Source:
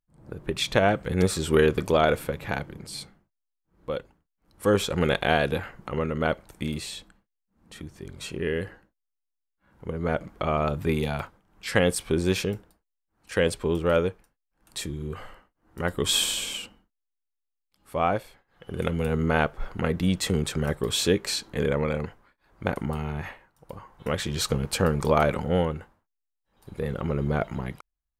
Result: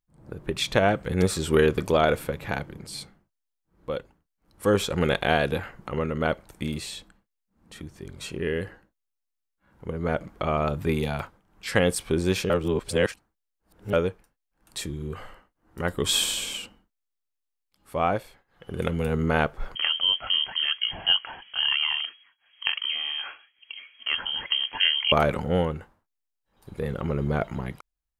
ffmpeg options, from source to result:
-filter_complex "[0:a]asettb=1/sr,asplit=3[s0][s1][s2];[s0]atrim=end=19.754[s3];[s1]atrim=start=19.75:end=25.12,asetpts=PTS-STARTPTS,afade=t=in:d=0.004:c=qsin,afade=t=out:st=5.366:d=0.004:c=qsin,lowpass=f=2800:t=q:w=0.5098,lowpass=f=2800:t=q:w=0.6013,lowpass=f=2800:t=q:w=0.9,lowpass=f=2800:t=q:w=2.563,afreqshift=-3300[s4];[s2]atrim=start=25.116[s5];[s3][s4]acrossfade=d=0.004:c1=hsin:c2=qsin[s6];[s6][s5]acrossfade=d=0.004:c1=qsin:c2=hsin,asplit=3[s7][s8][s9];[s7]atrim=end=12.502[s10];[s8]atrim=start=12.498:end=13.932,asetpts=PTS-STARTPTS,areverse[s11];[s9]atrim=start=13.928[s12];[s10][s11]acrossfade=d=0.004:c1=hsin:c2=hsin[s13];[s13][s12]acrossfade=d=0.004:c1=hsin:c2=hsin"

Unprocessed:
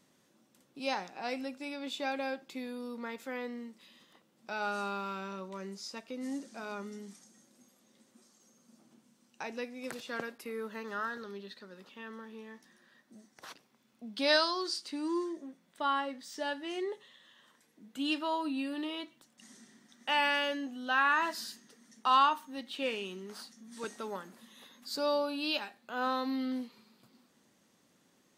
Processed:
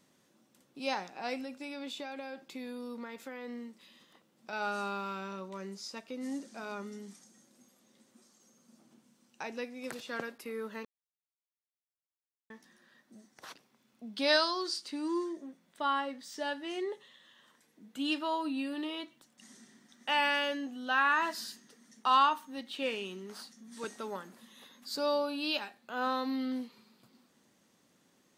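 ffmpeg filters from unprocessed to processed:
-filter_complex "[0:a]asettb=1/sr,asplit=3[s0][s1][s2];[s0]atrim=end=1.404[s3];[s1]atrim=start=1.4:end=4.53,asetpts=PTS-STARTPTS,afade=t=in:d=0.004:c=qsin,afade=t=out:st=3.126:d=0.004:c=qsin,acompressor=threshold=0.0141:ratio=6:attack=3.2:release=140:knee=1:detection=peak[s4];[s2]atrim=start=4.526[s5];[s3][s4]acrossfade=d=0.004:c1=hsin:c2=qsin[s6];[s6][s5]acrossfade=d=0.004:c1=qsin:c2=hsin,asplit=3[s7][s8][s9];[s7]atrim=end=10.85,asetpts=PTS-STARTPTS,afade=t=out:st=10.846:d=0.004:c=hsin[s10];[s8]atrim=start=10.85:end=12.5,asetpts=PTS-STARTPTS,volume=0[s11];[s9]atrim=start=12.5,asetpts=PTS-STARTPTS,afade=t=in:d=0.004:c=hsin[s12];[s10][s11][s12]concat=n=3:v=0:a=1"

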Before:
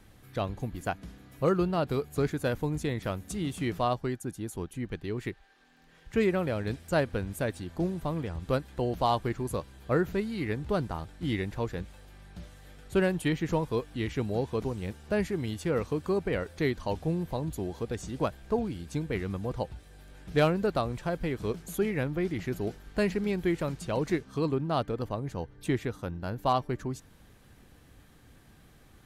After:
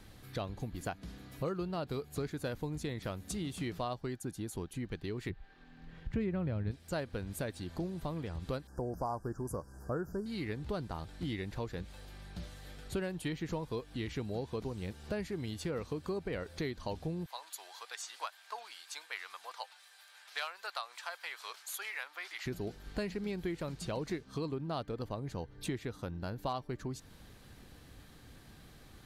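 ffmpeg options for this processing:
-filter_complex "[0:a]asplit=3[s0][s1][s2];[s0]afade=t=out:st=5.29:d=0.02[s3];[s1]bass=f=250:g=13,treble=f=4000:g=-13,afade=t=in:st=5.29:d=0.02,afade=t=out:st=6.7:d=0.02[s4];[s2]afade=t=in:st=6.7:d=0.02[s5];[s3][s4][s5]amix=inputs=3:normalize=0,asettb=1/sr,asplit=3[s6][s7][s8];[s6]atrim=end=8.674[s9];[s7]atrim=start=8.67:end=10.26,asetpts=PTS-STARTPTS,afade=t=in:d=0.004:c=qsin,afade=t=out:st=1.586:d=0.004:c=qsin,asuperstop=centerf=2900:order=20:qfactor=0.89[s10];[s8]atrim=start=10.256[s11];[s9][s10]acrossfade=d=0.004:c1=hsin:c2=qsin[s12];[s12][s11]acrossfade=d=0.004:c1=qsin:c2=hsin,asettb=1/sr,asplit=3[s13][s14][s15];[s13]atrim=end=17.264[s16];[s14]atrim=start=17.26:end=22.46,asetpts=PTS-STARTPTS,afade=t=in:d=0.004:c=qsin,afade=t=out:st=5.196:d=0.004:c=qsin,highpass=f=930:w=0.5412,highpass=f=930:w=1.3066[s17];[s15]atrim=start=22.456[s18];[s16][s17]acrossfade=d=0.004:c1=hsin:c2=qsin[s19];[s19][s18]acrossfade=d=0.004:c1=qsin:c2=hsin,equalizer=f=4300:w=2.1:g=5.5,acompressor=threshold=0.0126:ratio=3,volume=1.12"

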